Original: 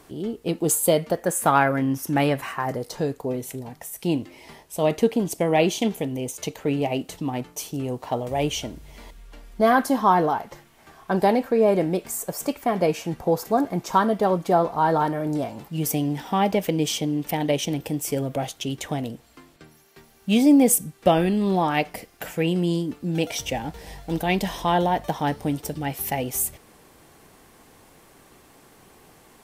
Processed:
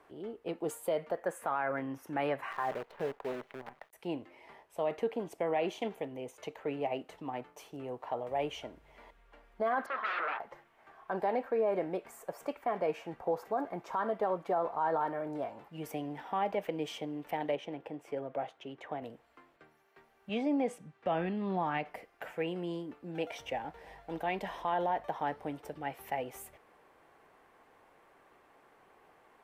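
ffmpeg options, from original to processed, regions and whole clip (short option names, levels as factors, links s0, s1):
-filter_complex "[0:a]asettb=1/sr,asplit=3[s0][s1][s2];[s0]atrim=end=2.514[s3];[s1]atrim=start=2.51:end=3.93,asetpts=PTS-STARTPTS,afade=t=in:d=0.004:c=qsin,afade=t=out:st=1.416:d=0.004:c=qsin,lowpass=f=3700:w=0.5412,lowpass=f=3700:w=1.3066,aecho=1:1:5:0.36,atrim=end_sample=62622,acrusher=bits=6:dc=4:mix=0:aa=0.000001[s4];[s2]atrim=start=3.926[s5];[s3][s4]acrossfade=d=0.004:c1=hsin:c2=qsin[s6];[s6][s5]acrossfade=d=0.004:c1=qsin:c2=hsin,asettb=1/sr,asplit=3[s7][s8][s9];[s7]atrim=end=9.864[s10];[s8]atrim=start=9.86:end=10.4,asetpts=PTS-STARTPTS,afade=t=in:d=0.004:c=qsin,afade=t=out:st=0.536:d=0.004:c=qsin,aeval=exprs='val(0)+0.0178*(sin(2*PI*50*n/s)+sin(2*PI*2*50*n/s)/2+sin(2*PI*3*50*n/s)/3+sin(2*PI*4*50*n/s)/4+sin(2*PI*5*50*n/s)/5)':c=same,aeval=exprs='0.075*(abs(mod(val(0)/0.075+3,4)-2)-1)':c=same,highpass=450,equalizer=f=870:t=q:w=4:g=-8,equalizer=f=1300:t=q:w=4:g=9,equalizer=f=1900:t=q:w=4:g=4,lowpass=f=4200:w=0.5412,lowpass=f=4200:w=1.3066[s11];[s9]atrim=start=10.396[s12];[s10][s11]acrossfade=d=0.004:c1=hsin:c2=qsin[s13];[s13][s12]acrossfade=d=0.004:c1=qsin:c2=hsin,asettb=1/sr,asplit=3[s14][s15][s16];[s14]atrim=end=17.554[s17];[s15]atrim=start=17.55:end=19.02,asetpts=PTS-STARTPTS,afade=t=in:d=0.004:c=qsin,afade=t=out:st=1.466:d=0.004:c=qsin,highpass=f=160:p=1,aemphasis=mode=reproduction:type=75kf[s18];[s16]atrim=start=19.016[s19];[s17][s18]acrossfade=d=0.004:c1=hsin:c2=qsin[s20];[s20][s19]acrossfade=d=0.004:c1=qsin:c2=hsin,asettb=1/sr,asplit=3[s21][s22][s23];[s21]atrim=end=20.294[s24];[s22]atrim=start=20.29:end=21.86,asetpts=PTS-STARTPTS,afade=t=in:d=0.004:c=qsin,afade=t=out:st=1.566:d=0.004:c=qsin,asubboost=boost=9.5:cutoff=200,highpass=120,lowpass=5600[s25];[s23]atrim=start=21.856[s26];[s24][s25]acrossfade=d=0.004:c1=hsin:c2=qsin[s27];[s27][s26]acrossfade=d=0.004:c1=qsin:c2=hsin,acrossover=split=410 2500:gain=0.2 1 0.112[s28][s29][s30];[s28][s29][s30]amix=inputs=3:normalize=0,alimiter=limit=0.15:level=0:latency=1:release=53,volume=0.501"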